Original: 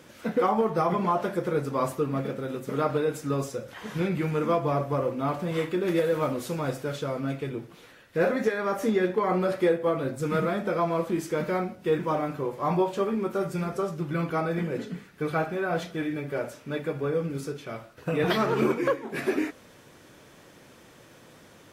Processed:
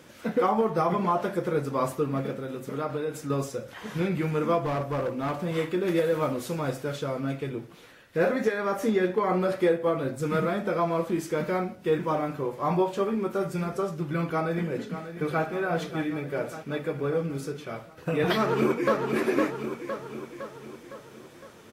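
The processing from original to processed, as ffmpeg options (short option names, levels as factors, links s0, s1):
-filter_complex "[0:a]asettb=1/sr,asplit=3[s0][s1][s2];[s0]atrim=end=2.354[s3];[s1]atrim=start=2.35:end=3.3,asetpts=PTS-STARTPTS,afade=t=in:d=0.004:c=qsin,afade=t=out:st=0.946:d=0.004:c=qsin,acompressor=threshold=0.02:ratio=1.5:attack=3.2:release=140:knee=1:detection=peak[s4];[s2]atrim=start=3.296[s5];[s3][s4]acrossfade=d=0.004:c1=hsin:c2=qsin[s6];[s6][s5]acrossfade=d=0.004:c1=qsin:c2=hsin,asettb=1/sr,asplit=3[s7][s8][s9];[s7]atrim=end=4.604[s10];[s8]atrim=start=4.6:end=5.39,asetpts=PTS-STARTPTS,afade=t=in:d=0.004:c=qsin,afade=t=out:st=0.786:d=0.004:c=qsin,asoftclip=type=hard:threshold=0.0596[s11];[s9]atrim=start=5.386[s12];[s10][s11]acrossfade=d=0.004:c1=hsin:c2=qsin[s13];[s13][s12]acrossfade=d=0.004:c1=qsin:c2=hsin,asplit=2[s14][s15];[s15]afade=t=in:st=14.3:d=0.01,afade=t=out:st=15.45:d=0.01,aecho=0:1:590|1180|1770|2360|2950|3540|4130|4720|5310|5900:0.281838|0.197287|0.138101|0.0966705|0.0676694|0.0473686|0.033158|0.0232106|0.0162474|0.0113732[s16];[s14][s16]amix=inputs=2:normalize=0,asplit=2[s17][s18];[s18]afade=t=in:st=18.36:d=0.01,afade=t=out:st=18.97:d=0.01,aecho=0:1:510|1020|1530|2040|2550|3060|3570:0.630957|0.347027|0.190865|0.104976|0.0577365|0.0317551|0.0174653[s19];[s17][s19]amix=inputs=2:normalize=0"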